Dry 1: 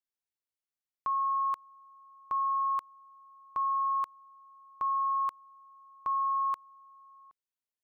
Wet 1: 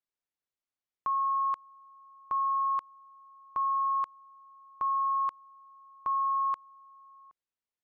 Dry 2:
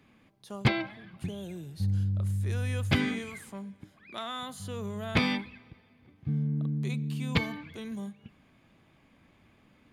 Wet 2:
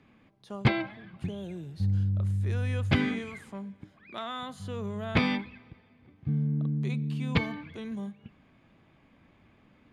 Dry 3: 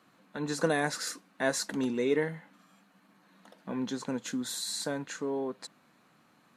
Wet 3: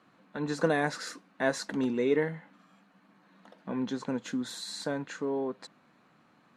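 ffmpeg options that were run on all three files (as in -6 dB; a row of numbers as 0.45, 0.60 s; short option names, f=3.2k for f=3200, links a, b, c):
-af "aemphasis=mode=reproduction:type=50fm,volume=1dB"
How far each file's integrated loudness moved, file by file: +1.0, +1.0, +0.5 LU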